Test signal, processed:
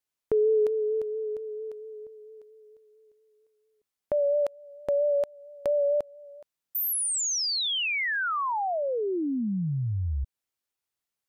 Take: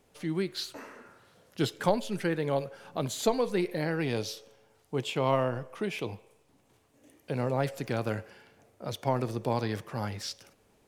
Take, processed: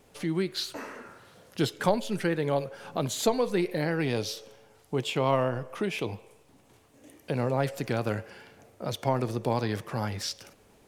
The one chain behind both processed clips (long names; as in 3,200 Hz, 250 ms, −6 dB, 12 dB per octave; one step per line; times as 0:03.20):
in parallel at +0.5 dB: downward compressor, threshold −39 dBFS
on the sum: pitch vibrato 4.4 Hz 32 cents